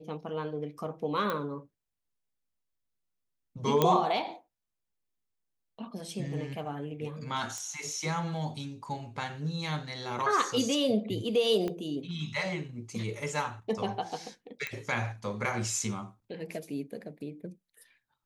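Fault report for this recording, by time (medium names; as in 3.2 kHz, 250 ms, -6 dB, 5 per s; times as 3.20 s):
1.30 s: pop -18 dBFS
3.82 s: pop -10 dBFS
7.58 s: pop -24 dBFS
11.68 s: pop -21 dBFS
14.67 s: pop -19 dBFS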